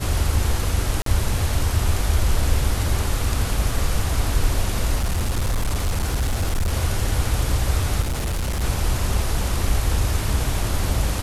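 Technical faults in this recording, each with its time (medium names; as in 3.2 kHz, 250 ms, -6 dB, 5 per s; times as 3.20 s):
1.02–1.06 s: dropout 43 ms
4.95–6.73 s: clipped -17.5 dBFS
8.01–8.63 s: clipped -20.5 dBFS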